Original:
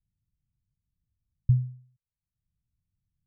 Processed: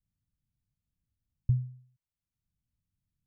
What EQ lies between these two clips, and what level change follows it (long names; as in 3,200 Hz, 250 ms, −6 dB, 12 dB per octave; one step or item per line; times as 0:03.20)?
parametric band 260 Hz +6.5 dB 0.92 octaves
dynamic equaliser 180 Hz, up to −5 dB, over −35 dBFS, Q 1.7
−4.0 dB